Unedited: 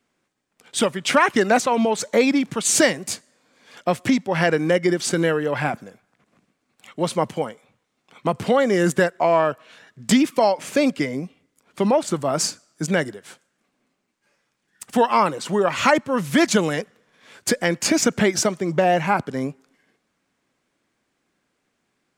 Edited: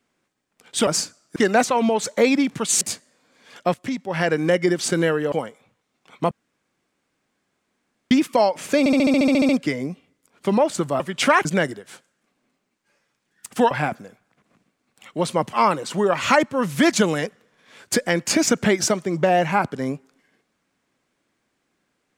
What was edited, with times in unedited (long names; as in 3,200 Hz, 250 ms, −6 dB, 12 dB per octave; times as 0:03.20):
0:00.87–0:01.32: swap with 0:12.33–0:12.82
0:02.77–0:03.02: remove
0:03.95–0:04.66: fade in, from −13.5 dB
0:05.53–0:07.35: move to 0:15.08
0:08.34–0:10.14: fill with room tone
0:10.82: stutter 0.07 s, 11 plays